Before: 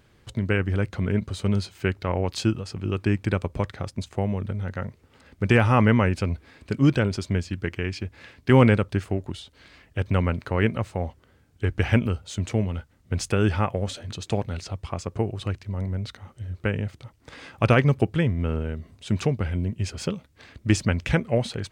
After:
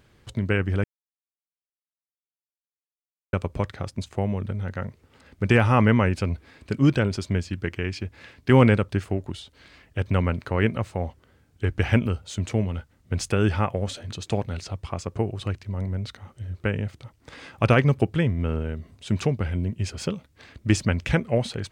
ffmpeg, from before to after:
ffmpeg -i in.wav -filter_complex "[0:a]asplit=3[link_01][link_02][link_03];[link_01]atrim=end=0.84,asetpts=PTS-STARTPTS,afade=type=out:start_time=0.836:duration=0.004:curve=hsin[link_04];[link_02]atrim=start=0.84:end=3.33,asetpts=PTS-STARTPTS,volume=0[link_05];[link_03]atrim=start=3.33,asetpts=PTS-STARTPTS,afade=type=in:duration=0.004:curve=hsin[link_06];[link_04][link_05][link_06]concat=n=3:v=0:a=1" out.wav

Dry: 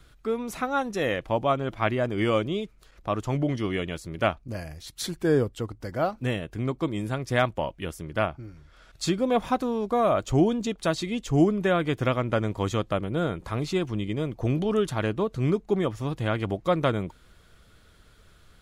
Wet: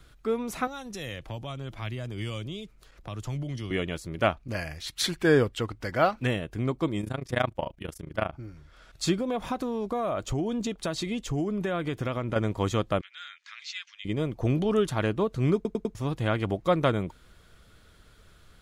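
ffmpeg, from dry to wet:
ffmpeg -i in.wav -filter_complex "[0:a]asettb=1/sr,asplit=3[link_01][link_02][link_03];[link_01]atrim=end=0.674[link_04];[link_02]atrim=start=0.67:end=3.71,asetpts=PTS-STARTPTS,afade=type=in:duration=0.004:curve=qsin,afade=type=out:start_time=3.036:duration=0.004:curve=qsin,acrossover=split=140|3000[link_05][link_06][link_07];[link_06]acompressor=threshold=-40dB:ratio=4:attack=3.2:release=140:knee=2.83:detection=peak[link_08];[link_05][link_08][link_07]amix=inputs=3:normalize=0[link_09];[link_03]atrim=start=3.706[link_10];[link_04][link_09]acrossfade=duration=0.004:curve1=hsin:curve2=qsin[link_11];[link_11][link_10]acrossfade=duration=0.004:curve1=qsin:curve2=hsin,asplit=3[link_12][link_13][link_14];[link_12]afade=type=out:start_time=4.39:duration=0.02[link_15];[link_13]equalizer=frequency=2300:width_type=o:width=2.3:gain=9.5,afade=type=in:start_time=4.39:duration=0.02,afade=type=out:start_time=6.26:duration=0.02[link_16];[link_14]afade=type=in:start_time=6.26:duration=0.02[link_17];[link_15][link_16][link_17]amix=inputs=3:normalize=0,asplit=3[link_18][link_19][link_20];[link_18]afade=type=out:start_time=7.01:duration=0.02[link_21];[link_19]tremolo=f=27:d=0.919,afade=type=in:start_time=7.01:duration=0.02,afade=type=out:start_time=8.33:duration=0.02[link_22];[link_20]afade=type=in:start_time=8.33:duration=0.02[link_23];[link_21][link_22][link_23]amix=inputs=3:normalize=0,asettb=1/sr,asplit=3[link_24][link_25][link_26];[link_24]atrim=end=9.204[link_27];[link_25]atrim=start=9.2:end=12.36,asetpts=PTS-STARTPTS,afade=type=in:duration=0.004:curve=qsin,afade=type=out:start_time=3.156:duration=0.004:curve=qsin,acompressor=threshold=-25dB:ratio=6:attack=3.2:release=140:knee=1:detection=peak[link_28];[link_26]atrim=start=12.356[link_29];[link_27][link_28]acrossfade=duration=0.004:curve1=hsin:curve2=qsin[link_30];[link_30][link_29]acrossfade=duration=0.004:curve1=qsin:curve2=hsin,asettb=1/sr,asplit=3[link_31][link_32][link_33];[link_31]atrim=end=13.014[link_34];[link_32]atrim=start=13.01:end=14.05,asetpts=PTS-STARTPTS,afade=type=in:duration=0.004:curve=qsin,afade=type=out:start_time=1.036:duration=0.004:curve=qsin,asuperpass=centerf=3400:order=8:qfactor=0.69[link_35];[link_33]atrim=start=14.046[link_36];[link_34][link_35]acrossfade=duration=0.004:curve1=hsin:curve2=qsin[link_37];[link_37][link_36]acrossfade=duration=0.004:curve1=qsin:curve2=hsin,asplit=5[link_38][link_39][link_40][link_41][link_42];[link_38]atrim=end=15.652[link_43];[link_39]atrim=start=15.548:end=15.652[link_44];[link_40]atrim=start=15.548:end=15.652[link_45];[link_41]atrim=start=15.548:end=15.652[link_46];[link_42]atrim=start=15.948[link_47];[link_43][link_44]acrossfade=duration=0.004:curve1=hsin:curve2=hsin[link_48];[link_48][link_45]acrossfade=duration=0.004:curve1=hsin:curve2=hsin[link_49];[link_49][link_46]acrossfade=duration=0.004:curve1=hsin:curve2=hsin[link_50];[link_50][link_47]acrossfade=duration=0.004:curve1=hsin:curve2=hsin" out.wav

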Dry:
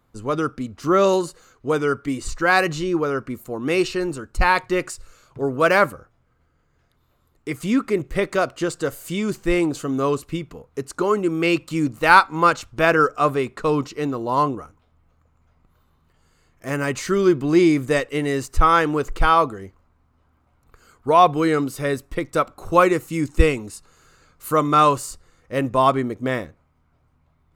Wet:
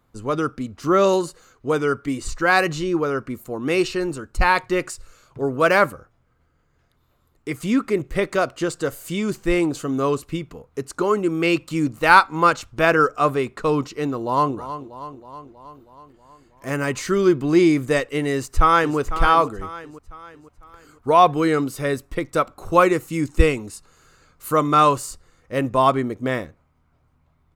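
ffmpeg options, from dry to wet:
ffmpeg -i in.wav -filter_complex "[0:a]asplit=2[link_01][link_02];[link_02]afade=type=in:start_time=14.16:duration=0.01,afade=type=out:start_time=14.56:duration=0.01,aecho=0:1:320|640|960|1280|1600|1920|2240|2560:0.251189|0.163273|0.106127|0.0689827|0.0448387|0.0291452|0.0189444|0.0123138[link_03];[link_01][link_03]amix=inputs=2:normalize=0,asplit=2[link_04][link_05];[link_05]afade=type=in:start_time=18.33:duration=0.01,afade=type=out:start_time=18.98:duration=0.01,aecho=0:1:500|1000|1500|2000|2500:0.266073|0.119733|0.0538797|0.0242459|0.0109106[link_06];[link_04][link_06]amix=inputs=2:normalize=0" out.wav

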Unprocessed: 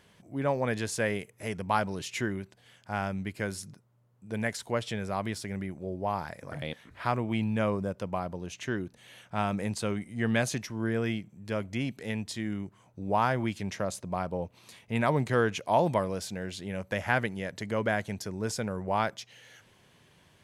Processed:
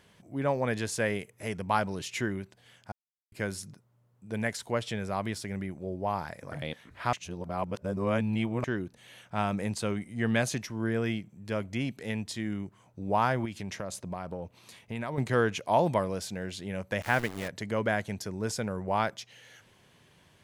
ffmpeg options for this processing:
ffmpeg -i in.wav -filter_complex "[0:a]asettb=1/sr,asplit=3[link_01][link_02][link_03];[link_01]atrim=end=13.454[link_04];[link_02]atrim=start=13.45:end=15.18,asetpts=PTS-STARTPTS,afade=type=in:duration=0.004:curve=qsin,afade=type=out:start_time=1.726:duration=0.004:curve=qsin,acompressor=threshold=-32dB:ratio=4:attack=3.2:release=140:knee=1:detection=peak[link_05];[link_03]atrim=start=15.176[link_06];[link_04][link_05]acrossfade=duration=0.004:curve1=hsin:curve2=qsin[link_07];[link_07][link_06]acrossfade=duration=0.004:curve1=qsin:curve2=hsin,asettb=1/sr,asplit=3[link_08][link_09][link_10];[link_08]atrim=end=17.024[link_11];[link_09]atrim=start=17.02:end=17.48,asetpts=PTS-STARTPTS,afade=type=in:duration=0.004:curve=qsin,afade=type=out:start_time=0.456:duration=0.004:curve=qsin,aeval=exprs='val(0)*gte(abs(val(0)),0.0168)':channel_layout=same[link_12];[link_10]atrim=start=17.476[link_13];[link_11][link_12]acrossfade=duration=0.004:curve1=hsin:curve2=qsin[link_14];[link_14][link_13]acrossfade=duration=0.004:curve1=qsin:curve2=hsin,asplit=5[link_15][link_16][link_17][link_18][link_19];[link_15]atrim=end=2.92,asetpts=PTS-STARTPTS,afade=type=out:start_time=2.916:duration=0.004:curve=hsin[link_20];[link_16]atrim=start=2.92:end=3.32,asetpts=PTS-STARTPTS,volume=0[link_21];[link_17]atrim=start=3.32:end=7.132,asetpts=PTS-STARTPTS,afade=type=in:duration=0.004:curve=hsin[link_22];[link_18]atrim=start=7.128:end=8.642,asetpts=PTS-STARTPTS,areverse[link_23];[link_19]atrim=start=8.638[link_24];[link_20][link_21][link_22]concat=n=3:v=0:a=1[link_25];[link_25][link_23]acrossfade=duration=0.004:curve1=hsin:curve2=hsin[link_26];[link_26][link_24]acrossfade=duration=0.004:curve1=hsin:curve2=hsin" out.wav

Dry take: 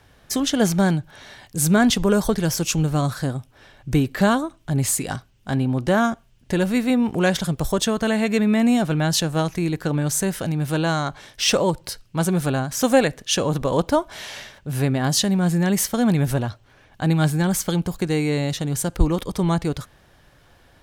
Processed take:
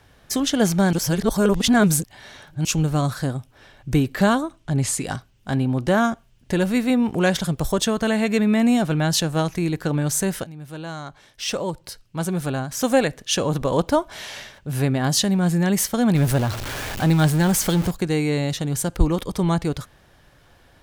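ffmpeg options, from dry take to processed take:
ffmpeg -i in.wav -filter_complex "[0:a]asettb=1/sr,asplit=3[link_01][link_02][link_03];[link_01]atrim=end=4.604[link_04];[link_02]atrim=start=4.6:end=5.03,asetpts=PTS-STARTPTS,afade=type=in:duration=0.004:curve=qsin,afade=type=out:start_time=0.426:duration=0.004:curve=qsin,lowpass=8800[link_05];[link_03]atrim=start=5.026[link_06];[link_04][link_05]acrossfade=duration=0.004:curve1=hsin:curve2=qsin[link_07];[link_07][link_06]acrossfade=duration=0.004:curve1=qsin:curve2=hsin,asettb=1/sr,asplit=3[link_08][link_09][link_10];[link_08]atrim=end=16.154[link_11];[link_09]atrim=start=16.15:end=17.91,asetpts=PTS-STARTPTS,afade=type=in:duration=0.004:curve=qsin,afade=type=out:start_time=1.756:duration=0.004:curve=qsin,aeval=exprs='val(0)+0.5*0.0631*sgn(val(0))':channel_layout=same[link_12];[link_10]atrim=start=17.906[link_13];[link_11][link_12]acrossfade=duration=0.004:curve1=hsin:curve2=qsin[link_14];[link_14][link_13]acrossfade=duration=0.004:curve1=qsin:curve2=hsin,asplit=4[link_15][link_16][link_17][link_18];[link_15]atrim=end=0.932[link_19];[link_16]atrim=start=0.928:end=2.652,asetpts=PTS-STARTPTS,areverse[link_20];[link_17]atrim=start=2.648:end=10.44,asetpts=PTS-STARTPTS,afade=type=out:start_time=7.788:duration=0.004:curve=hsin:silence=0.158489[link_21];[link_18]atrim=start=10.44,asetpts=PTS-STARTPTS,afade=type=in:duration=3.21:silence=0.158489[link_22];[link_19][link_20]acrossfade=duration=0.004:curve1=hsin:curve2=hsin[link_23];[link_21][link_22]concat=n=2:v=0:a=1[link_24];[link_23][link_24]acrossfade=duration=0.004:curve1=hsin:curve2=hsin" out.wav

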